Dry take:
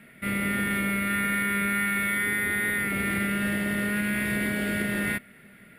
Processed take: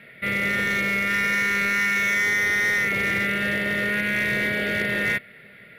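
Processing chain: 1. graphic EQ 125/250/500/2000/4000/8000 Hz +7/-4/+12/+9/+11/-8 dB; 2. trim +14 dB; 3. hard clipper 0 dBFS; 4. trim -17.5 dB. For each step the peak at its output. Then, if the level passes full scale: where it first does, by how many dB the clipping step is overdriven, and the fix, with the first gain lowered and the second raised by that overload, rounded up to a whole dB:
-6.5 dBFS, +7.5 dBFS, 0.0 dBFS, -17.5 dBFS; step 2, 7.5 dB; step 2 +6 dB, step 4 -9.5 dB

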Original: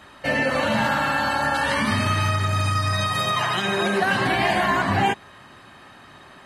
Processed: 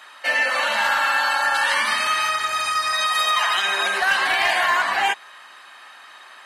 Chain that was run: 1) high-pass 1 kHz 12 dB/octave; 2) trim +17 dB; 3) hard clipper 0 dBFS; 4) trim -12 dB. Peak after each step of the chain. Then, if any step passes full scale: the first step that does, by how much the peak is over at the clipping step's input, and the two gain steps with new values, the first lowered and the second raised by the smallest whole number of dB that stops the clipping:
-11.0 dBFS, +6.0 dBFS, 0.0 dBFS, -12.0 dBFS; step 2, 6.0 dB; step 2 +11 dB, step 4 -6 dB

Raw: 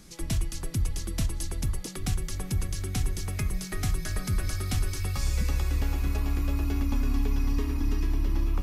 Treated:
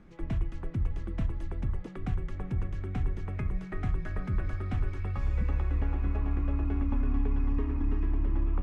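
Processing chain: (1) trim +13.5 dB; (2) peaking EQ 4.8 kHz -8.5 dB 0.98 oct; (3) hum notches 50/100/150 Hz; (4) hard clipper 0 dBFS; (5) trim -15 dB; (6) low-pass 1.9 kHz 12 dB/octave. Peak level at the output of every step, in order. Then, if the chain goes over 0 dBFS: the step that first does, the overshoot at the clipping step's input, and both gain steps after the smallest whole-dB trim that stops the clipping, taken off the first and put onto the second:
-2.5 dBFS, -3.0 dBFS, -3.0 dBFS, -3.0 dBFS, -18.0 dBFS, -18.0 dBFS; nothing clips

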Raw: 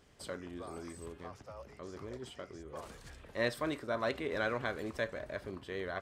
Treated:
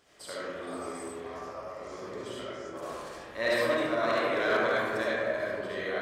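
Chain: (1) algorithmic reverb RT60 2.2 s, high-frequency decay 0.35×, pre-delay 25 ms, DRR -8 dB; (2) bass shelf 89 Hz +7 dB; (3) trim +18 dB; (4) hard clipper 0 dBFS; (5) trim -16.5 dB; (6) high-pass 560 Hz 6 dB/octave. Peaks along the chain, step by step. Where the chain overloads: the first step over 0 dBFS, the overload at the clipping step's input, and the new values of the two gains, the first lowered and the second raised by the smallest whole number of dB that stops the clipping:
-13.0 dBFS, -13.5 dBFS, +4.5 dBFS, 0.0 dBFS, -16.5 dBFS, -15.5 dBFS; step 3, 4.5 dB; step 3 +13 dB, step 5 -11.5 dB

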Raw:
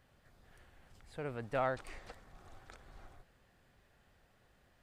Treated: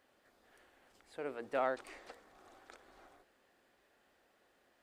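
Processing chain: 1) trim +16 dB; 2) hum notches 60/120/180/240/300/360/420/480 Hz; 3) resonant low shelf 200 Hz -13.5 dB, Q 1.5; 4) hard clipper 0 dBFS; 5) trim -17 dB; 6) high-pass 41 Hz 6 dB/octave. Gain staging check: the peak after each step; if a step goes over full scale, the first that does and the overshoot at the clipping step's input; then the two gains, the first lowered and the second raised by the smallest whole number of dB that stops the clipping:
-5.0 dBFS, -5.0 dBFS, -4.5 dBFS, -4.5 dBFS, -21.5 dBFS, -21.5 dBFS; nothing clips

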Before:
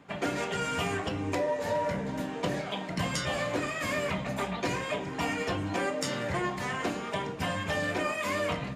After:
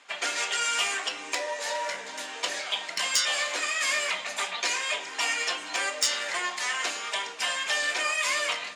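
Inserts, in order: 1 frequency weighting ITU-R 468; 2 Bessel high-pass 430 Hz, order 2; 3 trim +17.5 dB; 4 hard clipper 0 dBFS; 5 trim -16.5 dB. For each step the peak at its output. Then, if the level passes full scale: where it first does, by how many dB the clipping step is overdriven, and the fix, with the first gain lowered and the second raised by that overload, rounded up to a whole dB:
-8.0 dBFS, -8.0 dBFS, +9.5 dBFS, 0.0 dBFS, -16.5 dBFS; step 3, 9.5 dB; step 3 +7.5 dB, step 5 -6.5 dB

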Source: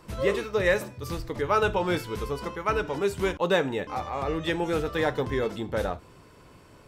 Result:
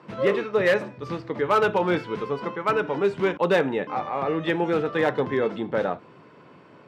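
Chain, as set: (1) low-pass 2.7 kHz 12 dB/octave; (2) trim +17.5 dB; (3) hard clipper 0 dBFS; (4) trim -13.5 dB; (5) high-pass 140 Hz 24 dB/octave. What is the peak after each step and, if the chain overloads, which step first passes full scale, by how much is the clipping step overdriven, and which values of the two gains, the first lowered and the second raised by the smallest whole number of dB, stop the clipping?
-11.0 dBFS, +6.5 dBFS, 0.0 dBFS, -13.5 dBFS, -8.0 dBFS; step 2, 6.5 dB; step 2 +10.5 dB, step 4 -6.5 dB

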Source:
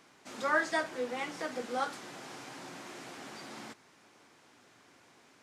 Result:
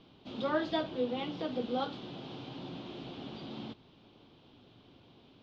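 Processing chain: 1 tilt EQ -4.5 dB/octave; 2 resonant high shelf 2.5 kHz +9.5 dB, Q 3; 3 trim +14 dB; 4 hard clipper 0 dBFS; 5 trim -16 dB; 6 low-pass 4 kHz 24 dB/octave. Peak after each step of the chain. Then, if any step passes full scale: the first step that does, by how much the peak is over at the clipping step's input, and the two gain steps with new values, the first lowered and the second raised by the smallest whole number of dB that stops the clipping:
-16.5 dBFS, -17.5 dBFS, -3.5 dBFS, -3.5 dBFS, -19.5 dBFS, -19.5 dBFS; nothing clips

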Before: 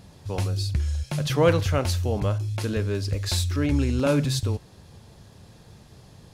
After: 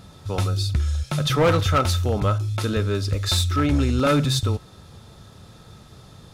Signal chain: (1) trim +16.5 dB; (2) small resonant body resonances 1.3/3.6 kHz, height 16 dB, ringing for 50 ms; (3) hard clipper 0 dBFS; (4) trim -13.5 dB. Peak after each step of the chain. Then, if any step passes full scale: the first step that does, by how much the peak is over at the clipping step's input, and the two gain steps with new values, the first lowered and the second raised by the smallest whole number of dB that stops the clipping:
+6.5 dBFS, +9.0 dBFS, 0.0 dBFS, -13.5 dBFS; step 1, 9.0 dB; step 1 +7.5 dB, step 4 -4.5 dB

